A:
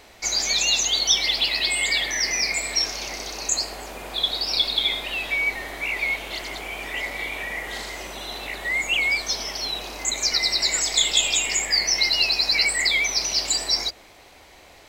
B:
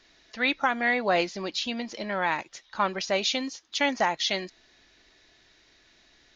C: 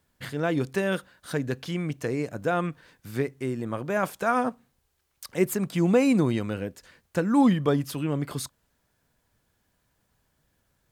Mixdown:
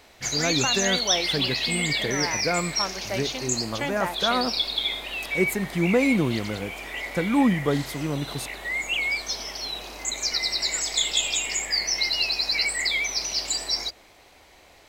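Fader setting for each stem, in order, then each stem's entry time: -4.0, -5.0, -0.5 dB; 0.00, 0.00, 0.00 s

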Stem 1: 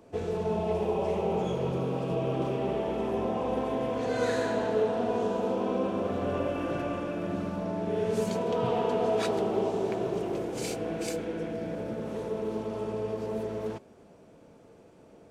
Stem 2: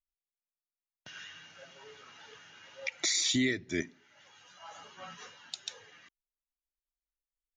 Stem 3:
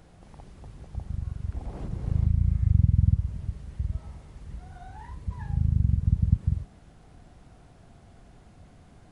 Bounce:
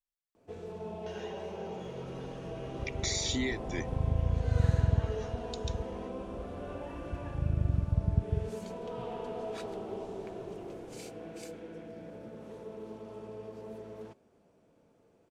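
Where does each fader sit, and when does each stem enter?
-11.5, -4.5, -6.0 dB; 0.35, 0.00, 1.85 s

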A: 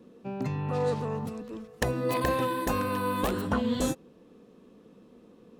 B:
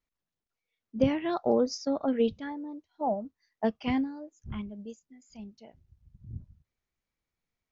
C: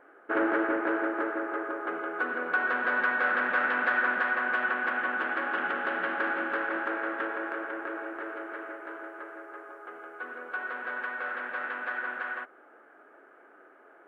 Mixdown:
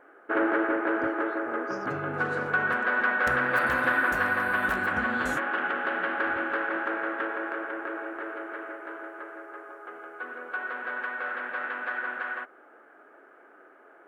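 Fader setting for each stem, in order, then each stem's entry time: -8.0, -16.5, +1.5 dB; 1.45, 0.00, 0.00 s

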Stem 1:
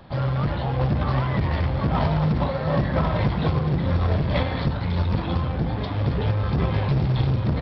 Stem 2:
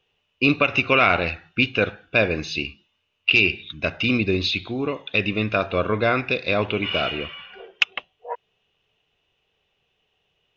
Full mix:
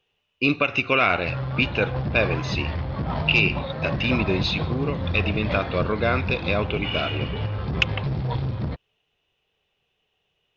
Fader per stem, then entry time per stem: -5.0, -2.5 dB; 1.15, 0.00 s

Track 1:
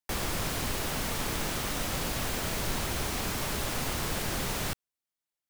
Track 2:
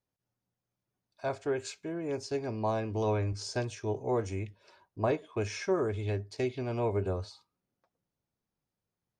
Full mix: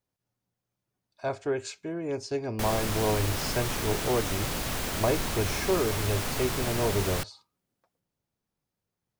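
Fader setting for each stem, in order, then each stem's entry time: +0.5, +2.5 dB; 2.50, 0.00 s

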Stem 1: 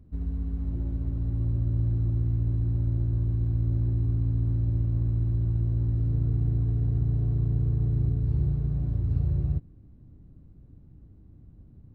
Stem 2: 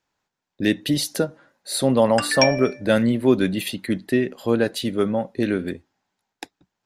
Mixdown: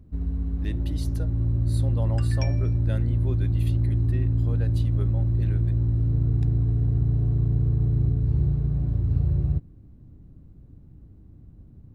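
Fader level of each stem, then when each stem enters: +3.0, -19.0 dB; 0.00, 0.00 s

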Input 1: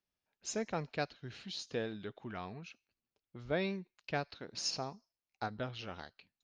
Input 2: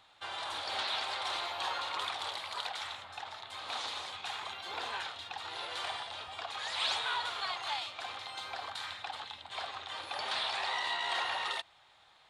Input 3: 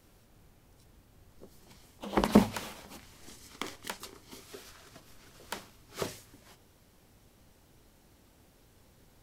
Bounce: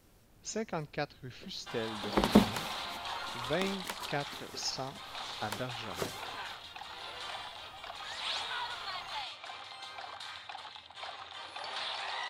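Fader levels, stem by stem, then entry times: +0.5, -3.5, -1.5 dB; 0.00, 1.45, 0.00 s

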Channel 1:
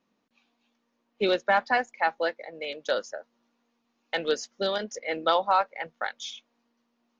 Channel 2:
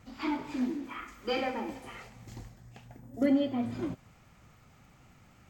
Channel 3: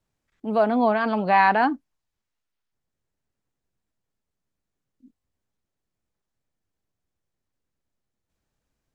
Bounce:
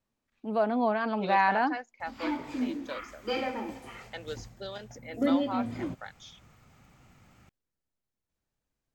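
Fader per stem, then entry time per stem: -12.5, 0.0, -6.5 dB; 0.00, 2.00, 0.00 s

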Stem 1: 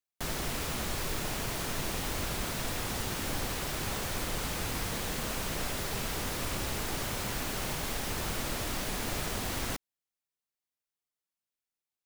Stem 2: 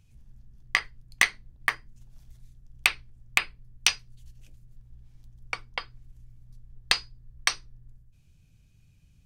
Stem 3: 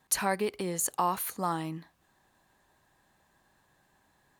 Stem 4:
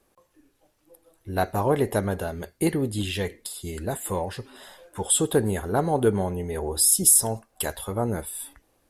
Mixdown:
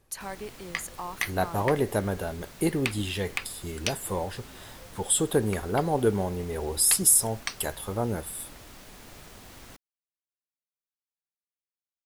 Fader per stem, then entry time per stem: -13.5, -8.5, -9.0, -2.5 dB; 0.00, 0.00, 0.00, 0.00 s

